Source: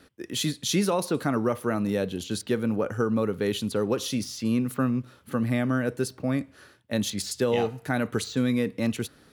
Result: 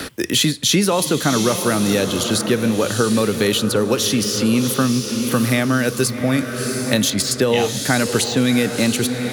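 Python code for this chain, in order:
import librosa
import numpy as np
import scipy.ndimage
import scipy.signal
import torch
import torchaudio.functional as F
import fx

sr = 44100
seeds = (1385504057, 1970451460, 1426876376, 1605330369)

p1 = fx.high_shelf(x, sr, hz=2500.0, db=8.5)
p2 = p1 + fx.echo_diffused(p1, sr, ms=699, feedback_pct=42, wet_db=-10, dry=0)
p3 = fx.band_squash(p2, sr, depth_pct=70)
y = p3 * librosa.db_to_amplitude(7.0)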